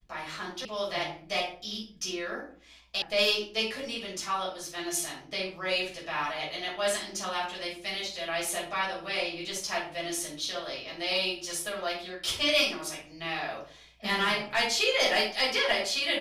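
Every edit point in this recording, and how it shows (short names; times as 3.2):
0.65 sound cut off
3.02 sound cut off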